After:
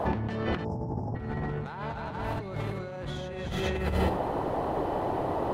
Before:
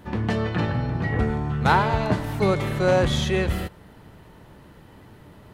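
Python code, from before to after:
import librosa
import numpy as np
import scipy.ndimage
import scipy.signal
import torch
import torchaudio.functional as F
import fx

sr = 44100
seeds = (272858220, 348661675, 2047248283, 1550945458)

y = fx.high_shelf(x, sr, hz=6300.0, db=-9.5)
y = fx.echo_multitap(y, sr, ms=(241, 293, 413, 495), db=(-11.5, -7.5, -7.5, -18.5))
y = fx.spec_erase(y, sr, start_s=0.65, length_s=0.5, low_hz=1000.0, high_hz=4900.0)
y = fx.dmg_noise_band(y, sr, seeds[0], low_hz=260.0, high_hz=930.0, level_db=-39.0)
y = fx.over_compress(y, sr, threshold_db=-32.0, ratio=-1.0)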